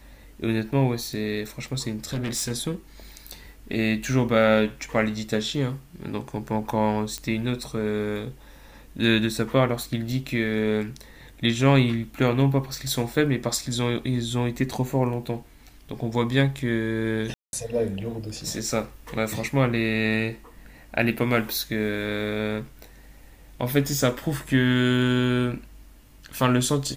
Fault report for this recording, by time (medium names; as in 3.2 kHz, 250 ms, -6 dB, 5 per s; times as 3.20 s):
2.04–2.52 s: clipped -24 dBFS
7.18 s: pop -15 dBFS
17.34–17.53 s: dropout 191 ms